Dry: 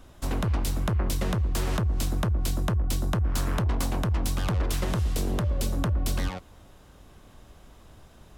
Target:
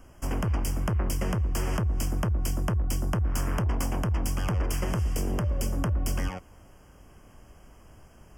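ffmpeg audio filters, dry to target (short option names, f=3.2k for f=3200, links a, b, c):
-af "asuperstop=centerf=3900:order=12:qfactor=2.7,volume=-1dB"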